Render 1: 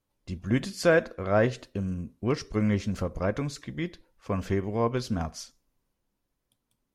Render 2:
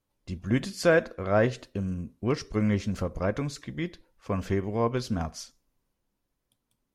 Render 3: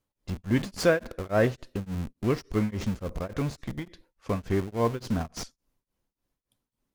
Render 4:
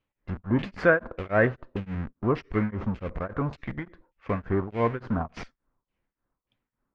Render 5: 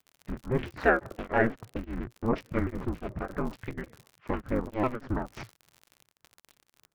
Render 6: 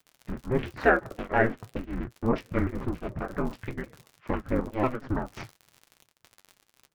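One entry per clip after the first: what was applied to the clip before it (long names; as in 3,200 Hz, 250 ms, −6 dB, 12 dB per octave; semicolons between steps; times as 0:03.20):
no processing that can be heard
in parallel at −7 dB: comparator with hysteresis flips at −35 dBFS; on the sum: tremolo along a rectified sine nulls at 3.5 Hz
auto-filter low-pass saw down 1.7 Hz 970–2,800 Hz
surface crackle 81 per second −36 dBFS; ring modulation 120 Hz; pitch modulation by a square or saw wave saw down 6 Hz, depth 250 cents
flanger 1 Hz, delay 5.7 ms, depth 5.6 ms, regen −58%; level +6 dB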